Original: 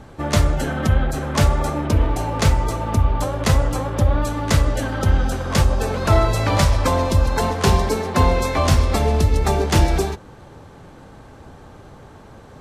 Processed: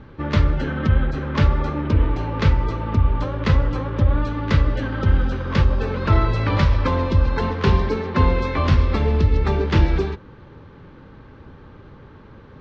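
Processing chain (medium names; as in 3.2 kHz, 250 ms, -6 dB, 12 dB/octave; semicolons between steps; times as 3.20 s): Bessel low-pass 2.9 kHz, order 6; peaking EQ 710 Hz -13 dB 0.46 oct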